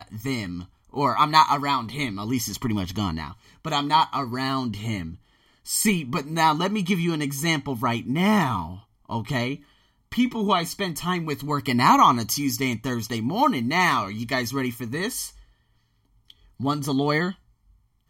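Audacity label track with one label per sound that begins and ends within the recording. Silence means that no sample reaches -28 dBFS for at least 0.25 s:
0.960000	3.310000	sound
3.650000	5.090000	sound
5.680000	8.740000	sound
9.110000	9.550000	sound
10.120000	15.260000	sound
16.600000	17.310000	sound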